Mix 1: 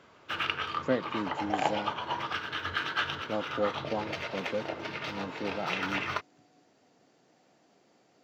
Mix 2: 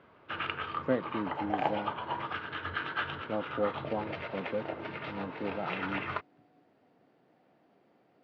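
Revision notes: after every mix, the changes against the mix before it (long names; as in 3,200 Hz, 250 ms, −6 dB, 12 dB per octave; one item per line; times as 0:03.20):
master: add high-frequency loss of the air 380 metres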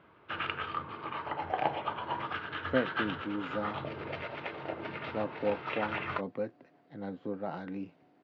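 speech: entry +1.85 s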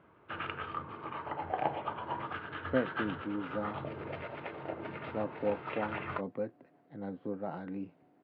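master: add head-to-tape spacing loss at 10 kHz 24 dB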